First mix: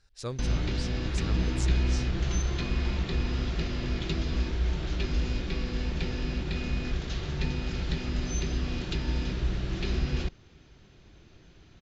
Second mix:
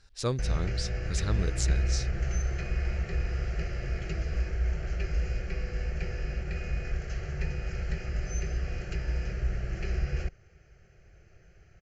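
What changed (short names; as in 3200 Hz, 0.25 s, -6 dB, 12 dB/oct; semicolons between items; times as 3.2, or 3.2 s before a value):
speech +6.0 dB; background: add fixed phaser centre 990 Hz, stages 6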